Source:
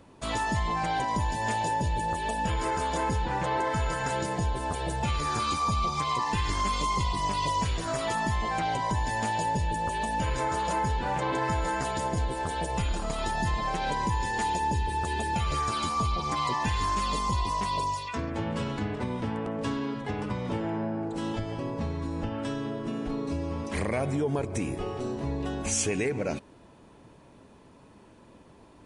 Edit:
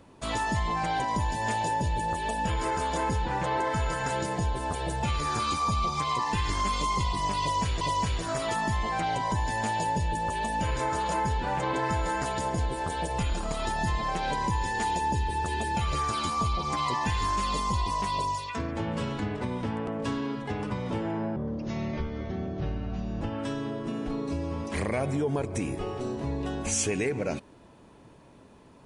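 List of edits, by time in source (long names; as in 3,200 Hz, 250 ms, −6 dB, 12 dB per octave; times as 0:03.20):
0:07.40–0:07.81: repeat, 2 plays
0:20.95–0:22.21: play speed 68%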